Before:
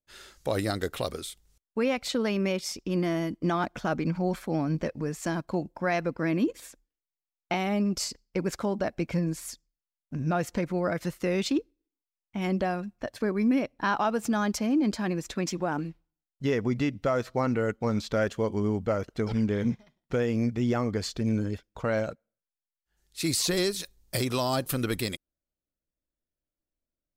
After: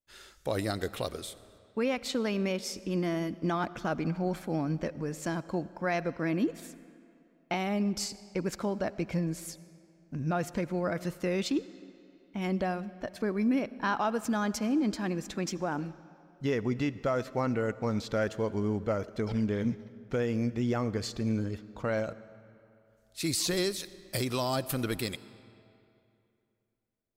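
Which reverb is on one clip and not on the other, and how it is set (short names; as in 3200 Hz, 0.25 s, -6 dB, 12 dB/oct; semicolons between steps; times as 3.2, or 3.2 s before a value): digital reverb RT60 2.7 s, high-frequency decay 0.75×, pre-delay 40 ms, DRR 17 dB; gain -3 dB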